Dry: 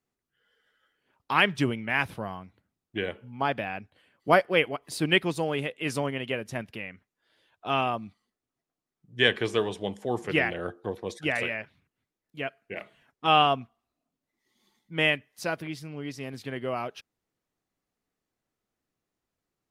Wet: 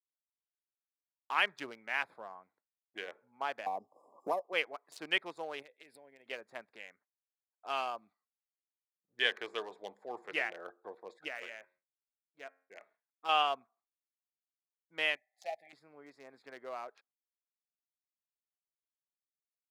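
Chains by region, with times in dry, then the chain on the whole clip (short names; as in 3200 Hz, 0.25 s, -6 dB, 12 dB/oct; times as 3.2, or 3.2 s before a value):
3.66–4.53 brick-wall FIR band-stop 1200–4900 Hz + three-band squash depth 100%
5.62–6.26 fixed phaser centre 2900 Hz, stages 4 + compressor, threshold -39 dBFS + high shelf 4300 Hz +11.5 dB
11.28–13.29 de-esser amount 90% + resonator 90 Hz, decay 0.59 s, mix 40%
15.16–15.73 brick-wall FIR band-stop 830–1700 Hz + resonant low shelf 530 Hz -10.5 dB, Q 3
whole clip: Wiener smoothing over 15 samples; expander -55 dBFS; HPF 640 Hz 12 dB/oct; gain -7 dB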